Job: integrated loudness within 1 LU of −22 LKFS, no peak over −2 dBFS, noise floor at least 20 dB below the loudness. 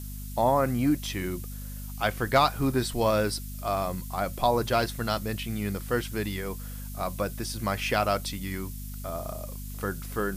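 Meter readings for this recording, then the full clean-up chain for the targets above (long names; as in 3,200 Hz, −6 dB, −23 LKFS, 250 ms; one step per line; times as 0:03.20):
mains hum 50 Hz; hum harmonics up to 250 Hz; level of the hum −35 dBFS; background noise floor −38 dBFS; target noise floor −49 dBFS; integrated loudness −28.5 LKFS; sample peak −10.0 dBFS; target loudness −22.0 LKFS
→ mains-hum notches 50/100/150/200/250 Hz
broadband denoise 11 dB, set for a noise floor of −38 dBFS
level +6.5 dB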